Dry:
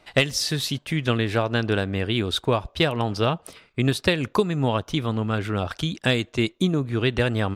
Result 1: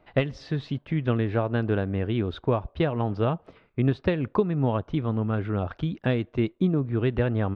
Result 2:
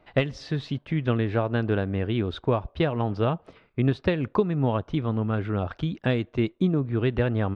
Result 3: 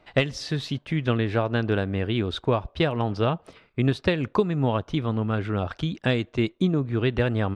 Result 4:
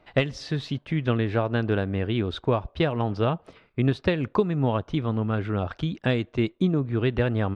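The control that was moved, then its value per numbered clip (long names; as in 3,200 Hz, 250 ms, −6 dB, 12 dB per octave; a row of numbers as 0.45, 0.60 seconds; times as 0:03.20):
head-to-tape spacing loss, at 10 kHz: 46, 37, 20, 29 decibels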